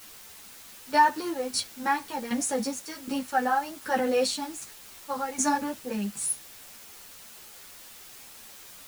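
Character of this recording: tremolo saw down 1.3 Hz, depth 80%; a quantiser's noise floor 8-bit, dither triangular; a shimmering, thickened sound

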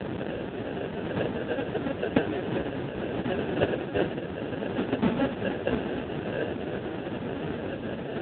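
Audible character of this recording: a quantiser's noise floor 6-bit, dither triangular; phasing stages 4, 0.61 Hz, lowest notch 670–1400 Hz; aliases and images of a low sample rate 1100 Hz, jitter 0%; AMR-NB

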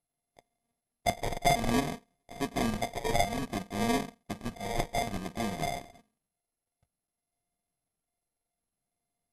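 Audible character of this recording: a buzz of ramps at a fixed pitch in blocks of 64 samples; phasing stages 6, 0.57 Hz, lowest notch 220–5000 Hz; aliases and images of a low sample rate 1400 Hz, jitter 0%; MP2

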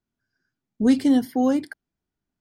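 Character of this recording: noise floor -86 dBFS; spectral tilt -5.0 dB/oct

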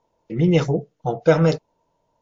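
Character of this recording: WMA

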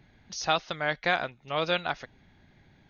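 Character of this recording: noise floor -61 dBFS; spectral tilt -3.0 dB/oct

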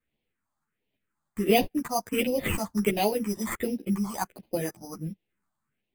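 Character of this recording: aliases and images of a low sample rate 5500 Hz, jitter 0%; phasing stages 4, 1.4 Hz, lowest notch 420–1300 Hz; tremolo saw up 3.1 Hz, depth 35%; a shimmering, thickened sound

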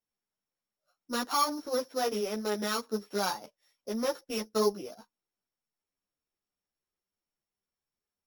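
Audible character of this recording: a buzz of ramps at a fixed pitch in blocks of 8 samples; a shimmering, thickened sound

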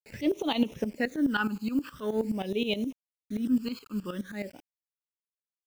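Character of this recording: a quantiser's noise floor 8-bit, dither none; phasing stages 12, 0.46 Hz, lowest notch 610–1600 Hz; tremolo saw up 9.5 Hz, depth 80%

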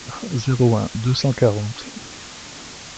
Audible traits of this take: phasing stages 6, 1.6 Hz, lowest notch 480–3400 Hz; a quantiser's noise floor 6-bit, dither triangular; A-law

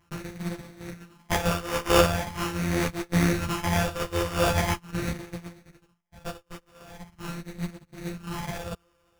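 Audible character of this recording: a buzz of ramps at a fixed pitch in blocks of 256 samples; phasing stages 8, 0.42 Hz, lowest notch 230–1200 Hz; aliases and images of a low sample rate 4100 Hz, jitter 0%; a shimmering, thickened sound

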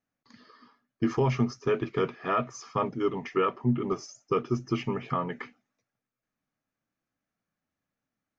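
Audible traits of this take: noise floor -89 dBFS; spectral tilt -5.0 dB/oct

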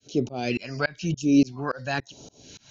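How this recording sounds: tremolo saw up 3.5 Hz, depth 100%; phasing stages 2, 0.99 Hz, lowest notch 340–1800 Hz

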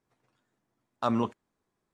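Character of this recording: noise floor -82 dBFS; spectral tilt -6.0 dB/oct

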